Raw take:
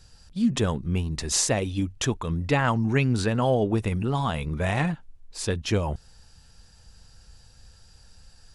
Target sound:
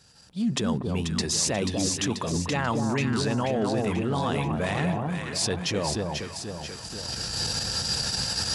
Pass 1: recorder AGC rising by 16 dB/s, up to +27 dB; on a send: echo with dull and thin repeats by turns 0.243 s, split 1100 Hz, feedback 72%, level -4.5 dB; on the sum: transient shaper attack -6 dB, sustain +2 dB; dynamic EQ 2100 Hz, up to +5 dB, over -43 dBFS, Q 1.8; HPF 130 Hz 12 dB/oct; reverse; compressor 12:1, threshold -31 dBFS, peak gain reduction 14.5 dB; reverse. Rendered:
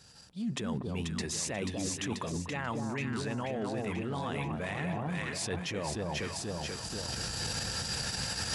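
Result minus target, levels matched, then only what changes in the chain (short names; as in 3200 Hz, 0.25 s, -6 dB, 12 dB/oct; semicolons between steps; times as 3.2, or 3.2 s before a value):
compressor: peak gain reduction +9.5 dB; 2000 Hz band +3.0 dB
change: dynamic EQ 4800 Hz, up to +5 dB, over -43 dBFS, Q 1.8; change: compressor 12:1, threshold -21 dBFS, peak gain reduction 5 dB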